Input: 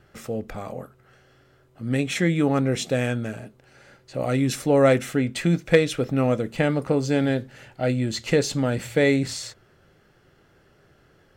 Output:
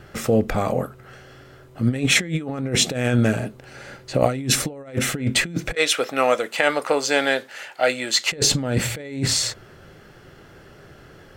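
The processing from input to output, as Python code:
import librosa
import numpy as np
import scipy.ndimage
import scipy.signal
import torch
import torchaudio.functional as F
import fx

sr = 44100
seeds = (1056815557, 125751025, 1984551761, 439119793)

y = fx.highpass(x, sr, hz=770.0, slope=12, at=(5.75, 8.32))
y = fx.over_compress(y, sr, threshold_db=-27.0, ratio=-0.5)
y = y * 10.0 ** (7.0 / 20.0)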